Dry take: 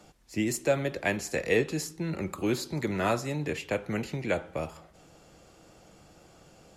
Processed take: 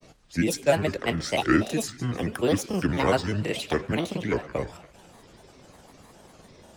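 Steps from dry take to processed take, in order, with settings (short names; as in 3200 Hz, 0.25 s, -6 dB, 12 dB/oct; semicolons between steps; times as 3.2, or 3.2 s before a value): thin delay 0.178 s, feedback 49%, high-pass 2000 Hz, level -16 dB; grains, spray 24 ms, pitch spread up and down by 7 st; gain +5.5 dB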